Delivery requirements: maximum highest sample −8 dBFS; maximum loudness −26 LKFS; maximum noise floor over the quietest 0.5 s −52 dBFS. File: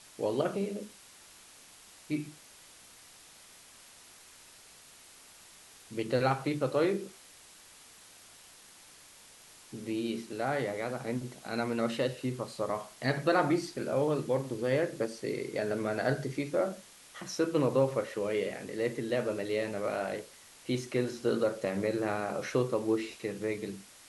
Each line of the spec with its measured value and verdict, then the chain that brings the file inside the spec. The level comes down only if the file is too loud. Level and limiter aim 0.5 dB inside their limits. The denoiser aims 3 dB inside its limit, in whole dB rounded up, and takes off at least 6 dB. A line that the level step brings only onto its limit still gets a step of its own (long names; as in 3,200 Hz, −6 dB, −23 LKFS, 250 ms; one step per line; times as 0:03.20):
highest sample −14.5 dBFS: in spec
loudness −32.5 LKFS: in spec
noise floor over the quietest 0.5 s −55 dBFS: in spec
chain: no processing needed